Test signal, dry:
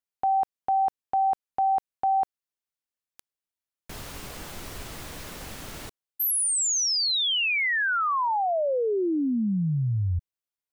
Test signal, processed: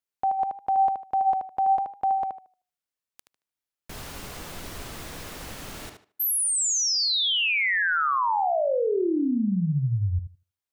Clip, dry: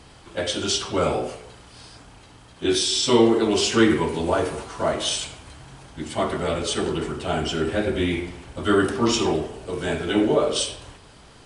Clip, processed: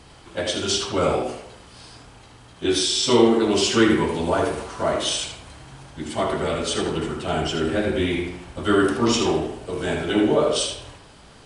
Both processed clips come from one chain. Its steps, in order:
tape delay 77 ms, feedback 25%, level −5 dB, low-pass 5,200 Hz

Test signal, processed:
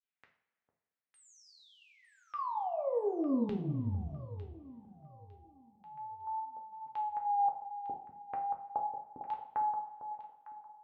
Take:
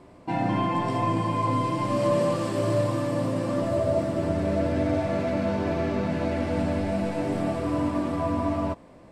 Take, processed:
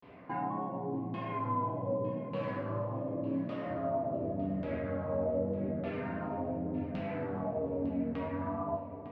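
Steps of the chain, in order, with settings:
high-pass filter 100 Hz 12 dB per octave
parametric band 340 Hz −5 dB 0.23 octaves
downward compressor 3 to 1, threshold −36 dBFS
auto-filter low-pass saw down 0.86 Hz 200–3,100 Hz
pitch vibrato 0.35 Hz 95 cents
high-frequency loss of the air 67 metres
delay that swaps between a low-pass and a high-pass 452 ms, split 860 Hz, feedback 51%, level −8.5 dB
coupled-rooms reverb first 0.5 s, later 2.9 s, from −21 dB, DRR 1 dB
level −4 dB

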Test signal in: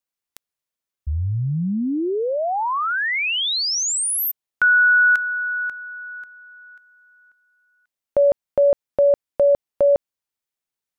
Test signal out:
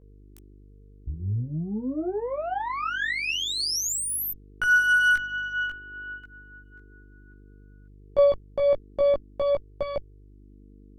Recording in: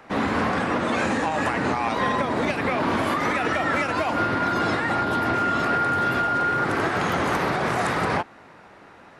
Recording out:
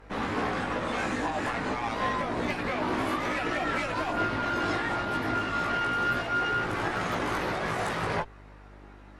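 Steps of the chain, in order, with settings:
harmonic generator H 4 −17 dB, 5 −41 dB, 6 −27 dB, 8 −25 dB, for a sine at −9.5 dBFS
hum with harmonics 50 Hz, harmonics 9, −47 dBFS −4 dB per octave
multi-voice chorus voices 4, 0.29 Hz, delay 18 ms, depth 1.9 ms
level −4 dB

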